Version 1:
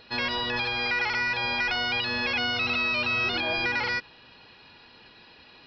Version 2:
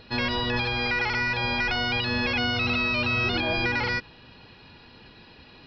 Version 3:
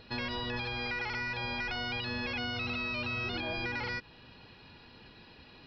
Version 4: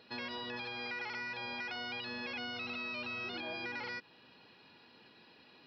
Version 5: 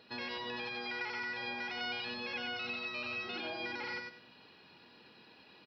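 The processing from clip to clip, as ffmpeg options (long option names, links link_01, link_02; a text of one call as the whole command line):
ffmpeg -i in.wav -af "lowshelf=frequency=310:gain=11.5" out.wav
ffmpeg -i in.wav -af "acompressor=threshold=-32dB:ratio=2,volume=-4.5dB" out.wav
ffmpeg -i in.wav -af "highpass=210,volume=-5dB" out.wav
ffmpeg -i in.wav -af "aecho=1:1:96|192|288|384:0.631|0.164|0.0427|0.0111" out.wav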